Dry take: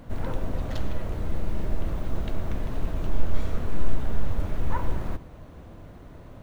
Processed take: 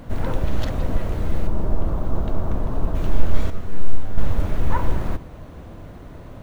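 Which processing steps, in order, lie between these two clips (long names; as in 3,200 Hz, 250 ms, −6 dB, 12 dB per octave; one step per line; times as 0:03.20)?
0:00.44–0:00.96: reverse
0:01.47–0:02.95: high shelf with overshoot 1,500 Hz −7.5 dB, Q 1.5
0:03.50–0:04.18: tuned comb filter 96 Hz, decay 0.29 s, harmonics all, mix 80%
level +6 dB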